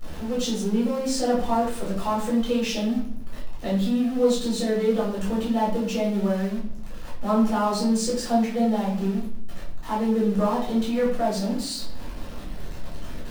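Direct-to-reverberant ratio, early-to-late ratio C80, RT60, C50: -6.5 dB, 9.0 dB, 0.60 s, 4.5 dB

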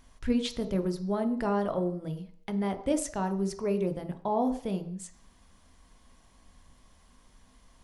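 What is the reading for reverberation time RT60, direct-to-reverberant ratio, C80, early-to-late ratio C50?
0.55 s, 7.0 dB, 15.0 dB, 12.5 dB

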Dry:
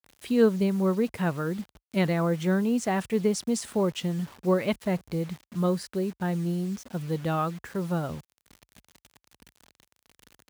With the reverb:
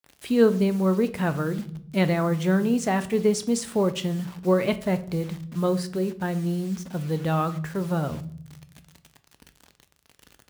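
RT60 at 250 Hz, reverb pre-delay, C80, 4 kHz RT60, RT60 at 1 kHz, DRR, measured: 1.5 s, 7 ms, 20.0 dB, 0.45 s, 0.50 s, 10.0 dB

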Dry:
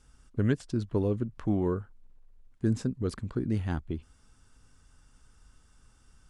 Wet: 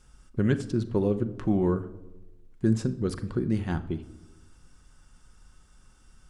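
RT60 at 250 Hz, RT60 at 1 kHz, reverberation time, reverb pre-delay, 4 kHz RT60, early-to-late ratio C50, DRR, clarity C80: 1.2 s, 0.85 s, 1.0 s, 5 ms, 0.60 s, 15.0 dB, 8.0 dB, 18.0 dB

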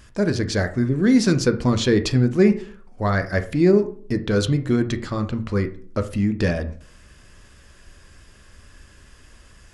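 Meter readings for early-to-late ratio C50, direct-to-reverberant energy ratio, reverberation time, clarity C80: 13.5 dB, 7.5 dB, 0.50 s, 18.0 dB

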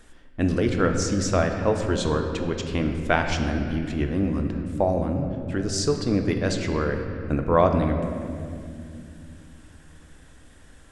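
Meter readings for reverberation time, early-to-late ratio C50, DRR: 2.4 s, 5.5 dB, 4.0 dB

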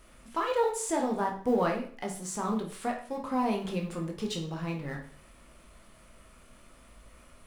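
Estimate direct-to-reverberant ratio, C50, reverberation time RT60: 1.0 dB, 7.5 dB, 0.45 s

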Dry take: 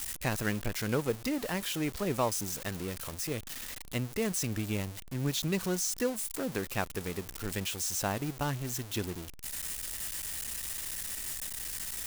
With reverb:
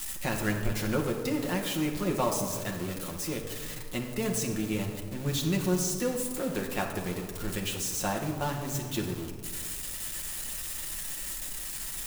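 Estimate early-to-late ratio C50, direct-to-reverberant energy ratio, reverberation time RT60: 5.5 dB, -1.0 dB, 1.8 s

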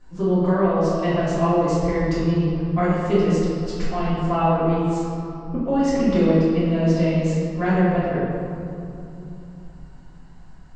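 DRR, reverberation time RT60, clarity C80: -12.0 dB, 3.0 s, -0.5 dB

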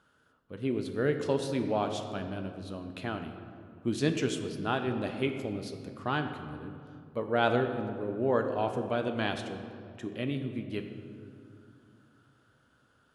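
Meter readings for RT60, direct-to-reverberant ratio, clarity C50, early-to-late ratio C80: 2.4 s, 5.5 dB, 7.5 dB, 8.5 dB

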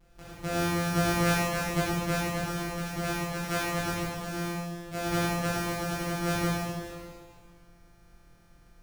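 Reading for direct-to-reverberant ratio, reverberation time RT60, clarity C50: -10.0 dB, 1.9 s, -3.0 dB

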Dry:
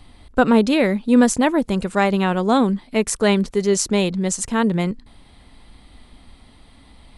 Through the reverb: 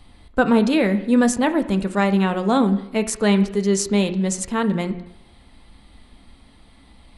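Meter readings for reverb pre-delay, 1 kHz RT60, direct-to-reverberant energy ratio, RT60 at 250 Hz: 3 ms, 0.85 s, 7.0 dB, 0.80 s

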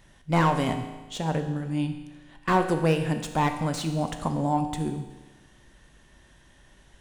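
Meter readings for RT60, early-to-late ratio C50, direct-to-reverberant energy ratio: 1.2 s, 8.5 dB, 6.0 dB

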